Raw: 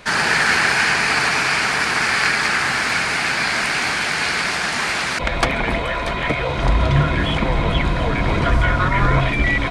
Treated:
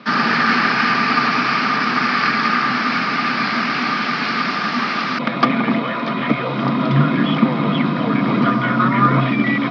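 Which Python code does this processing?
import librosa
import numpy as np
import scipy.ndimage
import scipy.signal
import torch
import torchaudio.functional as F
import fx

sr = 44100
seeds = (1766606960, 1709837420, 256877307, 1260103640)

y = scipy.signal.sosfilt(scipy.signal.cheby1(5, 1.0, [130.0, 5300.0], 'bandpass', fs=sr, output='sos'), x)
y = fx.small_body(y, sr, hz=(240.0, 1200.0), ring_ms=45, db=16)
y = y * librosa.db_to_amplitude(-2.0)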